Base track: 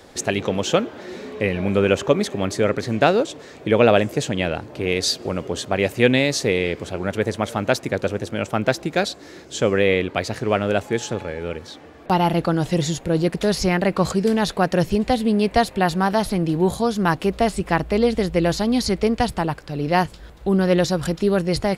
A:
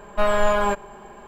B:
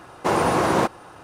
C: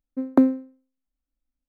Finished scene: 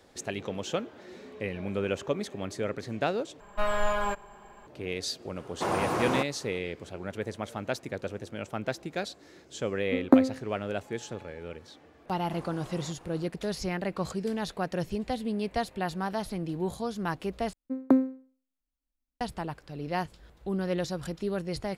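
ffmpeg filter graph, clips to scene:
ffmpeg -i bed.wav -i cue0.wav -i cue1.wav -i cue2.wav -filter_complex "[2:a]asplit=2[link_01][link_02];[3:a]asplit=2[link_03][link_04];[0:a]volume=-12.5dB[link_05];[1:a]equalizer=frequency=330:width=0.72:gain=-5[link_06];[link_03]asplit=2[link_07][link_08];[link_08]adelay=13,volume=-6.5dB[link_09];[link_07][link_09]amix=inputs=2:normalize=0[link_10];[link_02]acompressor=threshold=-33dB:ratio=6:attack=3.2:release=140:knee=1:detection=peak[link_11];[link_05]asplit=3[link_12][link_13][link_14];[link_12]atrim=end=3.404[link_15];[link_06]atrim=end=1.27,asetpts=PTS-STARTPTS,volume=-6.5dB[link_16];[link_13]atrim=start=4.666:end=17.534[link_17];[link_04]atrim=end=1.68,asetpts=PTS-STARTPTS,volume=-5dB[link_18];[link_14]atrim=start=19.206[link_19];[link_01]atrim=end=1.23,asetpts=PTS-STARTPTS,volume=-9dB,afade=type=in:duration=0.004:curve=hsin,afade=type=out:start_time=1.226:duration=0.004:curve=hsin,adelay=5360[link_20];[link_10]atrim=end=1.68,asetpts=PTS-STARTPTS,volume=-0.5dB,afade=type=in:duration=0.004:curve=hsin,afade=type=out:start_time=1.676:duration=0.004:curve=hsin,adelay=9750[link_21];[link_11]atrim=end=1.23,asetpts=PTS-STARTPTS,volume=-11.5dB,afade=type=in:duration=0.05,afade=type=out:start_time=1.18:duration=0.05,adelay=12060[link_22];[link_15][link_16]acrossfade=duration=0.004:curve1=hsin:curve2=hsin[link_23];[link_23][link_17]acrossfade=duration=0.004:curve1=hsin:curve2=hsin[link_24];[link_24][link_18]acrossfade=duration=0.004:curve1=hsin:curve2=hsin[link_25];[link_25][link_19]acrossfade=duration=0.004:curve1=hsin:curve2=hsin[link_26];[link_26][link_20][link_21][link_22]amix=inputs=4:normalize=0" out.wav

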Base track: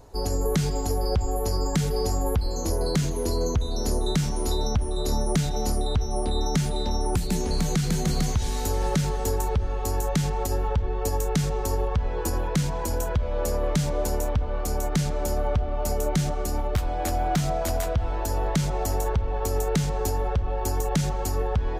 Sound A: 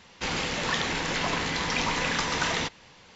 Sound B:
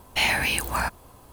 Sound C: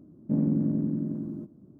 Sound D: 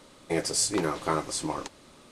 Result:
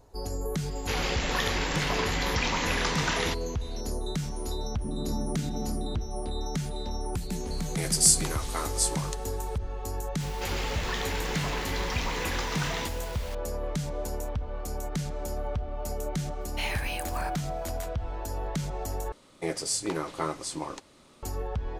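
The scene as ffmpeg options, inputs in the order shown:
ffmpeg -i bed.wav -i cue0.wav -i cue1.wav -i cue2.wav -i cue3.wav -filter_complex "[1:a]asplit=2[link_01][link_02];[4:a]asplit=2[link_03][link_04];[0:a]volume=-7.5dB[link_05];[3:a]acompressor=threshold=-31dB:ratio=6:attack=3.2:release=140:knee=1:detection=peak[link_06];[link_03]aemphasis=mode=production:type=riaa[link_07];[link_02]aeval=exprs='val(0)+0.5*0.0251*sgn(val(0))':channel_layout=same[link_08];[link_04]bandreject=frequency=1600:width=29[link_09];[link_05]asplit=2[link_10][link_11];[link_10]atrim=end=19.124[link_12];[link_09]atrim=end=2.11,asetpts=PTS-STARTPTS,volume=-3.5dB[link_13];[link_11]atrim=start=21.226[link_14];[link_01]atrim=end=3.15,asetpts=PTS-STARTPTS,volume=-1.5dB,afade=type=in:duration=0.004:curve=hsin,afade=type=out:start_time=3.146:duration=0.004:curve=hsin,adelay=660[link_15];[link_06]atrim=end=1.79,asetpts=PTS-STARTPTS,volume=-1.5dB,afade=type=in:duration=0.004:curve=hsin,afade=type=out:start_time=1.786:duration=0.004:curve=hsin,adelay=4550[link_16];[link_07]atrim=end=2.11,asetpts=PTS-STARTPTS,volume=-5.5dB,afade=type=in:duration=0.004:curve=hsin,afade=type=out:start_time=2.106:duration=0.004:curve=hsin,adelay=7470[link_17];[link_08]atrim=end=3.15,asetpts=PTS-STARTPTS,volume=-7.5dB,afade=type=in:duration=0.004:curve=hsin,afade=type=out:start_time=3.146:duration=0.004:curve=hsin,adelay=10200[link_18];[2:a]atrim=end=1.32,asetpts=PTS-STARTPTS,volume=-11dB,afade=type=in:duration=0.004:curve=hsin,afade=type=out:start_time=1.316:duration=0.004:curve=hsin,adelay=16410[link_19];[link_12][link_13]acrossfade=duration=0.004:curve1=hsin:curve2=hsin[link_20];[link_20][link_14]acrossfade=duration=0.004:curve1=hsin:curve2=hsin[link_21];[link_21][link_15][link_16][link_17][link_18][link_19]amix=inputs=6:normalize=0" out.wav

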